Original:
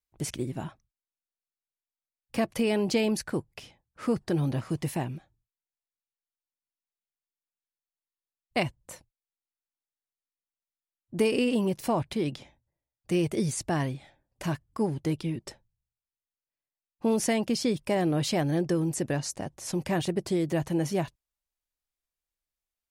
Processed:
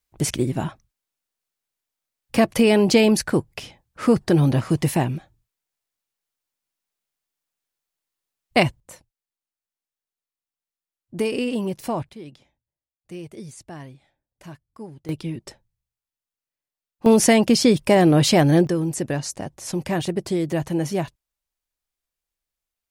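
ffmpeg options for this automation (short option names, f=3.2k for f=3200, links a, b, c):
-af "asetnsamples=n=441:p=0,asendcmd='8.8 volume volume 1dB;12.09 volume volume -10dB;15.09 volume volume 2dB;17.06 volume volume 11dB;18.67 volume volume 4dB',volume=10dB"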